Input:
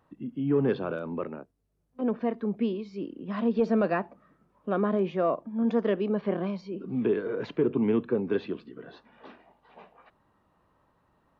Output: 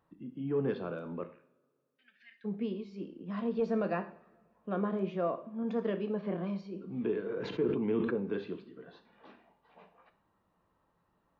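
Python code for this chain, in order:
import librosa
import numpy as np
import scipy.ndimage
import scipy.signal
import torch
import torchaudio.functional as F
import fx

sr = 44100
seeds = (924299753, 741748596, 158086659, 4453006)

y = fx.ellip_highpass(x, sr, hz=1700.0, order=4, stop_db=40, at=(1.24, 2.44), fade=0.02)
y = fx.rev_double_slope(y, sr, seeds[0], early_s=0.5, late_s=2.3, knee_db=-26, drr_db=7.0)
y = fx.sustainer(y, sr, db_per_s=33.0, at=(7.23, 8.14))
y = y * 10.0 ** (-7.5 / 20.0)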